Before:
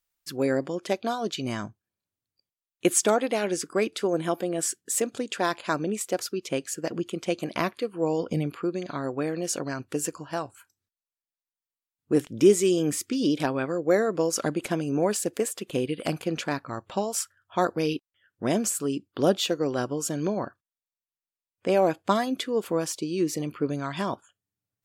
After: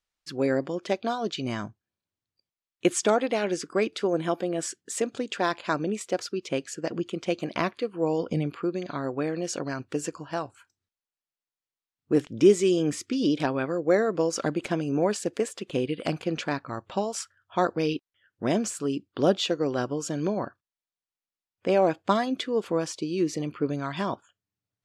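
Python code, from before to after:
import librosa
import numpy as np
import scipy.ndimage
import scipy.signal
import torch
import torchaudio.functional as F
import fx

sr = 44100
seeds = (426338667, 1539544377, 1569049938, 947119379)

y = scipy.signal.sosfilt(scipy.signal.butter(2, 6000.0, 'lowpass', fs=sr, output='sos'), x)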